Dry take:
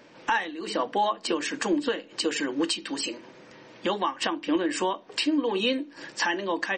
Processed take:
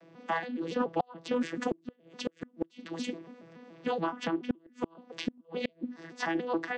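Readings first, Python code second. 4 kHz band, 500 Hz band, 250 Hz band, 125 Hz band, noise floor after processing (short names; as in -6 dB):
-14.0 dB, -6.0 dB, -5.5 dB, +0.5 dB, -65 dBFS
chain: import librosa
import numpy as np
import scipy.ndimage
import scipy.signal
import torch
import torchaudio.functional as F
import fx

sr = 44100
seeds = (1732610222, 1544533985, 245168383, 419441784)

y = fx.vocoder_arp(x, sr, chord='bare fifth', root=52, every_ms=142)
y = fx.gate_flip(y, sr, shuts_db=-18.0, range_db=-36)
y = fx.doppler_dist(y, sr, depth_ms=0.28)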